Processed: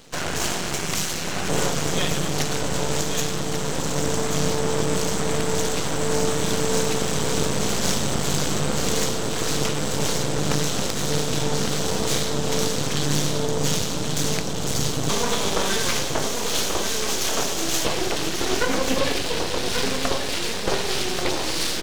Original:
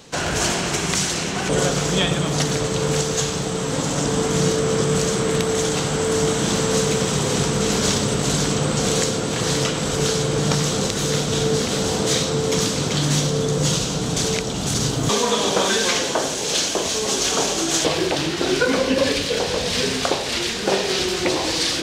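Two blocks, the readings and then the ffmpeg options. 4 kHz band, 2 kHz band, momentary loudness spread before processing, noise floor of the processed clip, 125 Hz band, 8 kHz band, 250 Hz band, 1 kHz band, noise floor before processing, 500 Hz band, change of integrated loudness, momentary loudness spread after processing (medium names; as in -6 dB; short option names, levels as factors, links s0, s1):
-3.5 dB, -3.0 dB, 3 LU, -26 dBFS, -4.5 dB, -3.0 dB, -4.0 dB, -2.5 dB, -25 dBFS, -4.5 dB, -3.5 dB, 2 LU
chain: -af "aeval=exprs='max(val(0),0)':c=same,aecho=1:1:1136:0.473"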